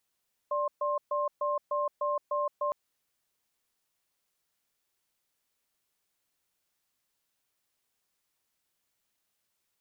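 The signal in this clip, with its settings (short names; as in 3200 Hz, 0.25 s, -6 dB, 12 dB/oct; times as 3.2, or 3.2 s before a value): cadence 587 Hz, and 1060 Hz, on 0.17 s, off 0.13 s, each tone -29.5 dBFS 2.21 s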